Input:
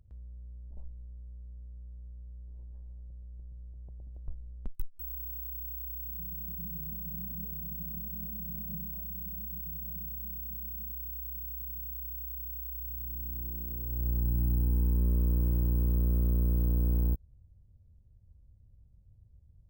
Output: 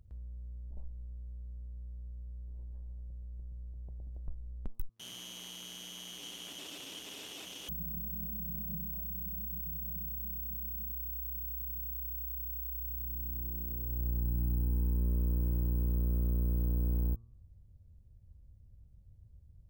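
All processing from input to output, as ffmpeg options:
ffmpeg -i in.wav -filter_complex "[0:a]asettb=1/sr,asplit=3[link_01][link_02][link_03];[link_01]atrim=end=4.894[link_04];[link_02]atrim=start=4.89:end=7.69,asetpts=PTS-STARTPTS,afade=type=in:duration=0.004:curve=qsin,afade=type=out:start_time=2.796:duration=0.004:curve=qsin,aeval=exprs='(mod(89.1*val(0)+1,2)-1)/89.1':channel_layout=same,highpass=180,lowpass=7100[link_05];[link_03]atrim=start=7.686[link_06];[link_04][link_05]acrossfade=duration=0.004:curve1=hsin:curve2=qsin[link_07];[link_07][link_06]acrossfade=duration=0.004:curve1=qsin:curve2=hsin,bandreject=frequency=114:width_type=h:width=4,bandreject=frequency=228:width_type=h:width=4,bandreject=frequency=342:width_type=h:width=4,bandreject=frequency=456:width_type=h:width=4,bandreject=frequency=570:width_type=h:width=4,bandreject=frequency=684:width_type=h:width=4,bandreject=frequency=798:width_type=h:width=4,bandreject=frequency=912:width_type=h:width=4,bandreject=frequency=1026:width_type=h:width=4,bandreject=frequency=1140:width_type=h:width=4,bandreject=frequency=1254:width_type=h:width=4,acompressor=threshold=-40dB:ratio=1.5,volume=1.5dB" out.wav

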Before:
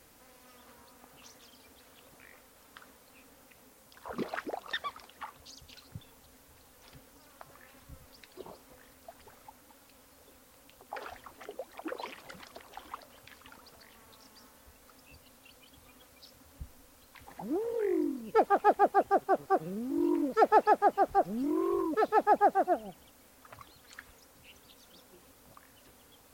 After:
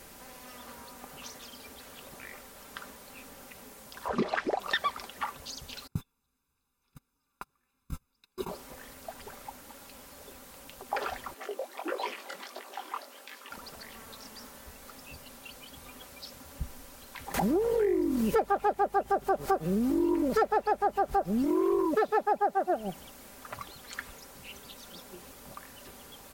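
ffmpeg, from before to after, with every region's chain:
ffmpeg -i in.wav -filter_complex "[0:a]asettb=1/sr,asplit=3[link_01][link_02][link_03];[link_01]atrim=end=4.084[link_04];[link_02]atrim=start=4.08:end=4.6,asetpts=PTS-STARTPTS,afade=type=in:duration=0.004:curve=qsin,afade=type=out:start_time=0.516:duration=0.004:curve=qsin,lowpass=6500,bandreject=frequency=1400:width=20[link_05];[link_03]atrim=start=4.596[link_06];[link_04][link_05]acrossfade=duration=0.004:curve1=hsin:curve2=qsin[link_07];[link_07][link_06]acrossfade=duration=0.004:curve1=qsin:curve2=hsin,asettb=1/sr,asplit=3[link_08][link_09][link_10];[link_08]atrim=end=5.874[link_11];[link_09]atrim=start=5.87:end=8.49,asetpts=PTS-STARTPTS,afade=type=in:duration=0.004:curve=qsin,afade=type=out:start_time=2.616:duration=0.004:curve=qsin,agate=range=-33dB:threshold=-50dB:ratio=16:release=100:detection=peak,aecho=1:1:0.8:0.84,atrim=end_sample=115542[link_12];[link_10]atrim=start=8.486[link_13];[link_11][link_12]acrossfade=duration=0.004:curve1=hsin:curve2=qsin[link_14];[link_14][link_13]acrossfade=duration=0.004:curve1=qsin:curve2=hsin,asettb=1/sr,asplit=3[link_15][link_16][link_17];[link_15]atrim=end=11.344[link_18];[link_16]atrim=start=11.34:end=13.51,asetpts=PTS-STARTPTS,afade=type=in:duration=0.004:curve=qsin,afade=type=out:start_time=2.166:duration=0.004:curve=qsin,highpass=frequency=270:width=0.5412,highpass=frequency=270:width=1.3066,flanger=delay=18:depth=6.6:speed=1.5[link_19];[link_17]atrim=start=13.506[link_20];[link_18][link_19]acrossfade=duration=0.004:curve1=hsin:curve2=qsin[link_21];[link_21][link_20]acrossfade=duration=0.004:curve1=qsin:curve2=hsin,asettb=1/sr,asplit=3[link_22][link_23][link_24];[link_22]atrim=end=17.344[link_25];[link_23]atrim=start=17.34:end=21.45,asetpts=PTS-STARTPTS,afade=type=in:duration=0.004:curve=qsin,afade=type=out:start_time=4.106:duration=0.004:curve=qsin,acompressor=mode=upward:threshold=-26dB:ratio=2.5:attack=3.2:release=140:knee=2.83:detection=peak,aeval=exprs='val(0)+0.00251*(sin(2*PI*50*n/s)+sin(2*PI*2*50*n/s)/2+sin(2*PI*3*50*n/s)/3+sin(2*PI*4*50*n/s)/4+sin(2*PI*5*50*n/s)/5)':channel_layout=same[link_26];[link_24]atrim=start=21.446[link_27];[link_25][link_26]acrossfade=duration=0.004:curve1=hsin:curve2=qsin[link_28];[link_28][link_27]acrossfade=duration=0.004:curve1=qsin:curve2=hsin,aecho=1:1:5.1:0.34,acompressor=threshold=-33dB:ratio=6,volume=9dB" out.wav

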